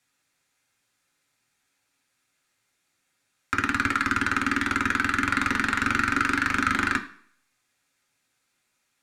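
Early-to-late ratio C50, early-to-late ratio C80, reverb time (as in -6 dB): 12.5 dB, 16.5 dB, not exponential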